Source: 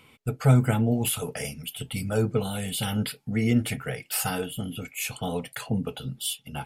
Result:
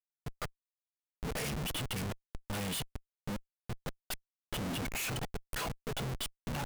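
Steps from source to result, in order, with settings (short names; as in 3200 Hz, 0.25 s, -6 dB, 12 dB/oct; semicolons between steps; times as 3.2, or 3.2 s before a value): flipped gate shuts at -19 dBFS, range -34 dB; Schmitt trigger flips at -41 dBFS; gain +1 dB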